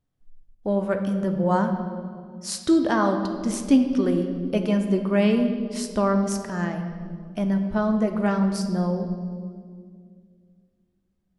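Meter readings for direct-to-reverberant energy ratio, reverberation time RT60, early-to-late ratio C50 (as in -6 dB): 5.0 dB, 2.1 s, 7.5 dB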